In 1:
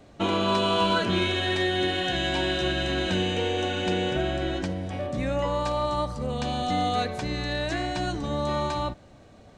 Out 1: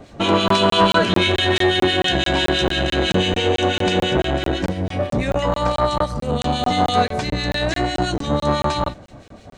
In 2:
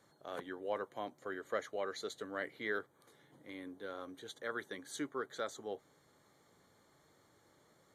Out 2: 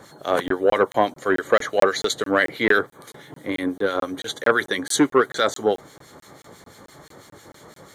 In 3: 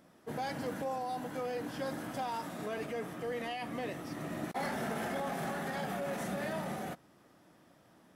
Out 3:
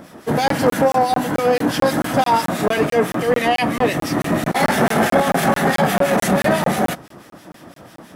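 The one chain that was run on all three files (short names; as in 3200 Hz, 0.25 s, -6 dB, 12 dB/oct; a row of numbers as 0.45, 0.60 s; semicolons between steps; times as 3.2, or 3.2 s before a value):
harmonic tremolo 6 Hz, depth 70%, crossover 1700 Hz; crackling interface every 0.22 s, samples 1024, zero, from 0.48; core saturation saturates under 570 Hz; normalise peaks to -2 dBFS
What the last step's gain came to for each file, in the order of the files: +12.5, +25.5, +25.0 dB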